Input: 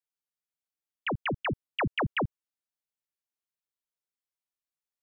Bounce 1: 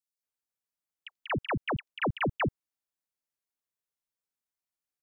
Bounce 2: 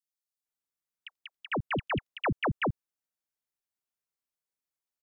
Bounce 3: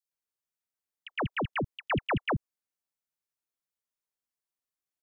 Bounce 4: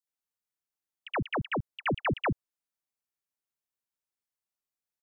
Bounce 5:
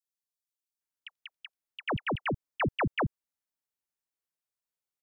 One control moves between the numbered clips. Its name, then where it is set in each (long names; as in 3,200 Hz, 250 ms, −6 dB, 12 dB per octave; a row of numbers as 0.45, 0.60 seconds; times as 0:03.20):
multiband delay without the direct sound, delay time: 230, 450, 110, 70, 810 milliseconds